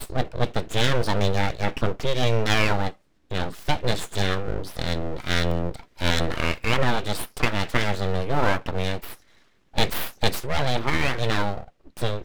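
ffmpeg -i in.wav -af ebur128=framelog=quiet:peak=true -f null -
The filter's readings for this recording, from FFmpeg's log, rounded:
Integrated loudness:
  I:         -25.8 LUFS
  Threshold: -36.0 LUFS
Loudness range:
  LRA:         2.2 LU
  Threshold: -46.1 LUFS
  LRA low:   -27.1 LUFS
  LRA high:  -24.9 LUFS
True peak:
  Peak:       -4.2 dBFS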